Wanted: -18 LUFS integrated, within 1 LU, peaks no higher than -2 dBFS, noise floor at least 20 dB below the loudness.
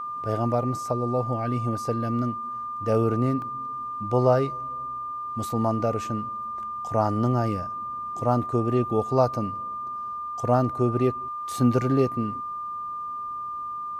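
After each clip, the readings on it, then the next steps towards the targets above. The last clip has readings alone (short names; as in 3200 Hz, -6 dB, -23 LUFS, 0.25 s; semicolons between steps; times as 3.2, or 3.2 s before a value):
dropouts 1; longest dropout 1.2 ms; steady tone 1200 Hz; tone level -30 dBFS; loudness -26.5 LUFS; peak -6.5 dBFS; loudness target -18.0 LUFS
-> interpolate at 3.42, 1.2 ms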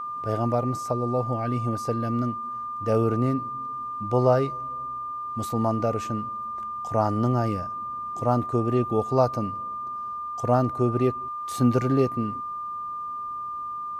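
dropouts 0; steady tone 1200 Hz; tone level -30 dBFS
-> notch 1200 Hz, Q 30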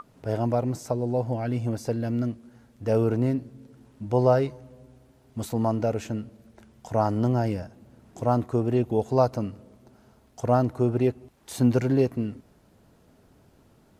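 steady tone none; loudness -26.0 LUFS; peak -7.5 dBFS; loudness target -18.0 LUFS
-> gain +8 dB; limiter -2 dBFS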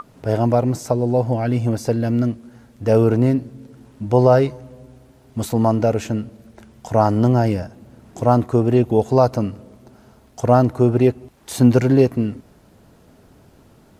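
loudness -18.0 LUFS; peak -2.0 dBFS; noise floor -51 dBFS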